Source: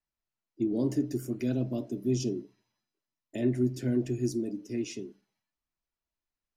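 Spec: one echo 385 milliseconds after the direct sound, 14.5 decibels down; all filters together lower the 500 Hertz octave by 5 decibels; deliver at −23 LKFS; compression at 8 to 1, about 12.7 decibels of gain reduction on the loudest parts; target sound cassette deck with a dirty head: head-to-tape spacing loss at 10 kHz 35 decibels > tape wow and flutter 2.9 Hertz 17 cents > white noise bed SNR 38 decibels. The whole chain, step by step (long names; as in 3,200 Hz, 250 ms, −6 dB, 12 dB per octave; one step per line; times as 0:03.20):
parametric band 500 Hz −6 dB
downward compressor 8 to 1, threshold −38 dBFS
head-to-tape spacing loss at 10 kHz 35 dB
single-tap delay 385 ms −14.5 dB
tape wow and flutter 2.9 Hz 17 cents
white noise bed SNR 38 dB
level +21 dB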